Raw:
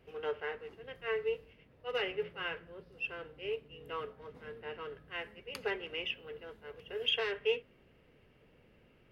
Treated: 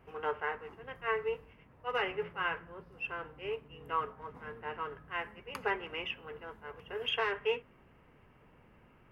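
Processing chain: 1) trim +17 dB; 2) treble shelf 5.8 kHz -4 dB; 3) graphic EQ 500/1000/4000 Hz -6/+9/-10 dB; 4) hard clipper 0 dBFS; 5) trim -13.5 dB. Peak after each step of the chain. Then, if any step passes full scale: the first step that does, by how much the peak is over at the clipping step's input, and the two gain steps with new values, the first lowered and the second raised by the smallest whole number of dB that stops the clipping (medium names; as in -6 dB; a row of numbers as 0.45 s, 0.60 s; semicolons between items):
-1.5 dBFS, -2.0 dBFS, -5.0 dBFS, -5.0 dBFS, -18.5 dBFS; nothing clips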